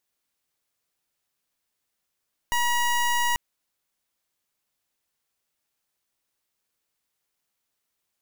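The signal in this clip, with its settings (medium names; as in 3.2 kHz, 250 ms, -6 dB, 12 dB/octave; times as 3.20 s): pulse 960 Hz, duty 22% -23 dBFS 0.84 s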